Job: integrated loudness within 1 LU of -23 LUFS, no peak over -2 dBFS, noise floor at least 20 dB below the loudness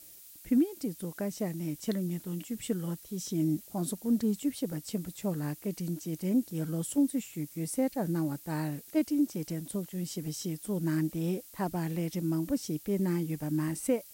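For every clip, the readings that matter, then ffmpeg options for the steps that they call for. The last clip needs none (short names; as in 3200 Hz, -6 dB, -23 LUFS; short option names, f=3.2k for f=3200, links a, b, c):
noise floor -52 dBFS; noise floor target -53 dBFS; loudness -32.5 LUFS; peak -17.0 dBFS; loudness target -23.0 LUFS
-> -af "afftdn=nr=6:nf=-52"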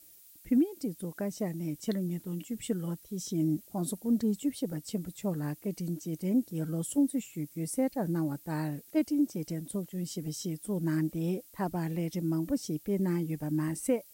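noise floor -56 dBFS; loudness -33.0 LUFS; peak -17.0 dBFS; loudness target -23.0 LUFS
-> -af "volume=10dB"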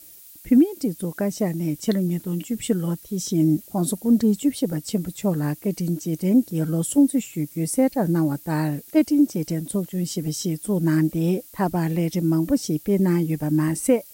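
loudness -23.0 LUFS; peak -7.0 dBFS; noise floor -46 dBFS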